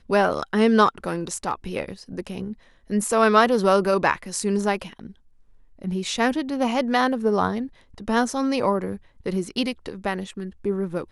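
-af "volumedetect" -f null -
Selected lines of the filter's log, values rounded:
mean_volume: -23.6 dB
max_volume: -3.4 dB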